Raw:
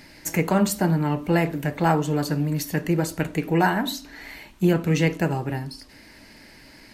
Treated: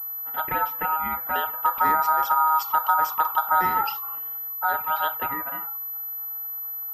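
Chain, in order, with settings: 1.64–4.19 s: tone controls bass +14 dB, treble +12 dB; level-controlled noise filter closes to 510 Hz, open at -10 dBFS; compression 2.5:1, threshold -16 dBFS, peak gain reduction 5.5 dB; touch-sensitive flanger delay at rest 9.1 ms, full sweep at -15.5 dBFS; ring modulator 1.1 kHz; class-D stage that switches slowly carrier 12 kHz

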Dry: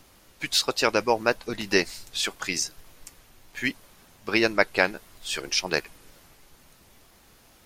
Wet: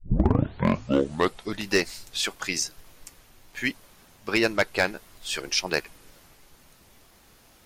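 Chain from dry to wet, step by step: tape start-up on the opening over 1.66 s; hard clipper -12.5 dBFS, distortion -14 dB

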